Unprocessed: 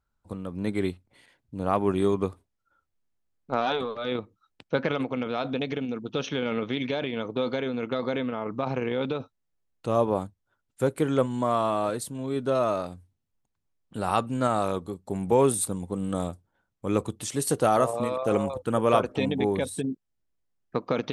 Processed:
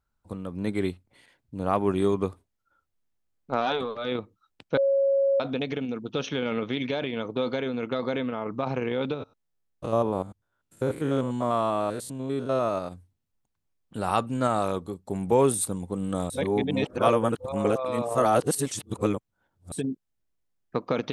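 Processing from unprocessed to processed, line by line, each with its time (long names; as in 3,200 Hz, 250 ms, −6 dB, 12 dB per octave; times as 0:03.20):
0:04.77–0:05.40: beep over 550 Hz −19 dBFS
0:09.14–0:12.92: spectrum averaged block by block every 100 ms
0:16.30–0:19.72: reverse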